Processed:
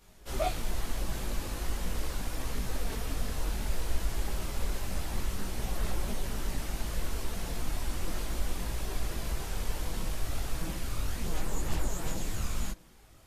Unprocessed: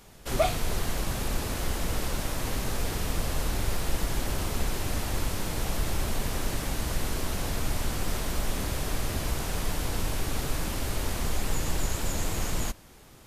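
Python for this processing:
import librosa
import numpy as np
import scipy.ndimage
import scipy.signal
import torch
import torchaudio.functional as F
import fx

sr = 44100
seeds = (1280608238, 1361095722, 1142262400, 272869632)

y = fx.chorus_voices(x, sr, voices=6, hz=0.71, base_ms=19, depth_ms=3.2, mix_pct=55)
y = y * 10.0 ** (-3.5 / 20.0)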